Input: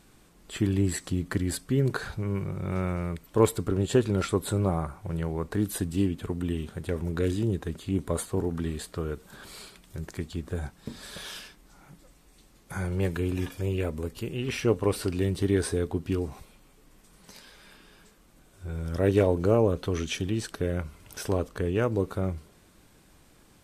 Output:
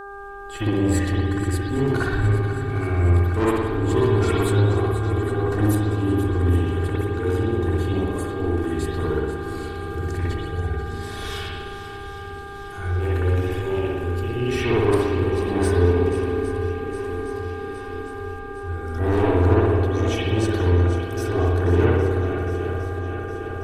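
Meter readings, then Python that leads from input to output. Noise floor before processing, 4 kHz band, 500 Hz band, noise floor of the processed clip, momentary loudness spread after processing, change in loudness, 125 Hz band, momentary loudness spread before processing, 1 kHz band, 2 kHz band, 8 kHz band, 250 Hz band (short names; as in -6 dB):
-58 dBFS, +4.5 dB, +6.5 dB, -34 dBFS, 12 LU, +6.5 dB, +9.0 dB, 14 LU, +10.0 dB, +9.5 dB, -1.0 dB, +5.5 dB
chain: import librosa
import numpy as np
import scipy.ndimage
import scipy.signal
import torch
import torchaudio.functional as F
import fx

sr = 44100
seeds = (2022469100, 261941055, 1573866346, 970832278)

y = fx.low_shelf(x, sr, hz=83.0, db=12.0)
y = y + 0.78 * np.pad(y, (int(2.7 * sr / 1000.0), 0))[:len(y)]
y = fx.tremolo_shape(y, sr, shape='saw_up', hz=0.87, depth_pct=75)
y = fx.echo_swing(y, sr, ms=811, ratio=1.5, feedback_pct=60, wet_db=-12)
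y = 10.0 ** (-21.5 / 20.0) * np.tanh(y / 10.0 ** (-21.5 / 20.0))
y = fx.rev_spring(y, sr, rt60_s=1.3, pass_ms=(57,), chirp_ms=70, drr_db=-7.0)
y = fx.dmg_buzz(y, sr, base_hz=400.0, harmonics=4, level_db=-38.0, tilt_db=-1, odd_only=False)
y = y * 10.0 ** (1.0 / 20.0)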